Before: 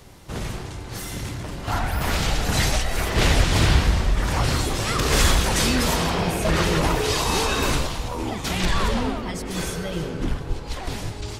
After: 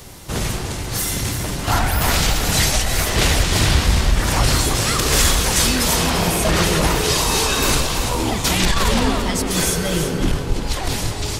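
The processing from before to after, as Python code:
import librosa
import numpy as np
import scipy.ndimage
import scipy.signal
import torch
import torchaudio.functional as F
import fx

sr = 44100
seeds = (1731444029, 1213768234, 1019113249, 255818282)

y = fx.high_shelf(x, sr, hz=4700.0, db=9.0)
y = fx.rider(y, sr, range_db=3, speed_s=0.5)
y = y + 10.0 ** (-8.5 / 20.0) * np.pad(y, (int(340 * sr / 1000.0), 0))[:len(y)]
y = fx.transformer_sat(y, sr, knee_hz=45.0)
y = y * 10.0 ** (3.5 / 20.0)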